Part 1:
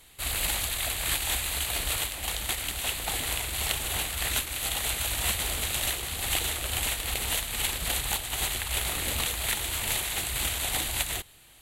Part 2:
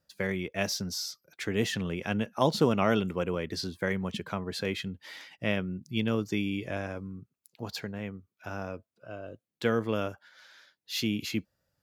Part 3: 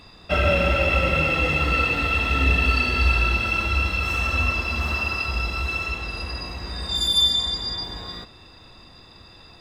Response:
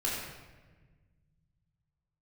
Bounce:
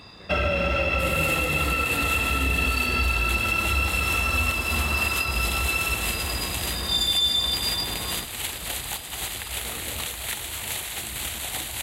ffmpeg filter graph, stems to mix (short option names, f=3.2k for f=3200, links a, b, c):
-filter_complex "[0:a]adelay=800,volume=-1.5dB[a];[1:a]volume=-20dB[b];[2:a]volume=2dB[c];[a][b][c]amix=inputs=3:normalize=0,highpass=59,alimiter=limit=-13.5dB:level=0:latency=1:release=336"